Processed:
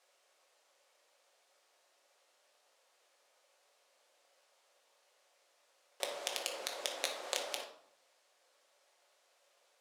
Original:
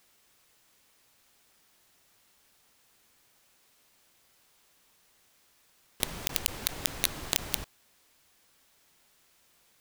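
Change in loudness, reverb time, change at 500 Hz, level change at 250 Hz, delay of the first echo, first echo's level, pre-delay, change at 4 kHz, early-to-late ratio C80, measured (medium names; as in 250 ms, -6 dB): -7.5 dB, 0.65 s, +2.5 dB, -15.0 dB, no echo, no echo, 5 ms, -5.5 dB, 11.5 dB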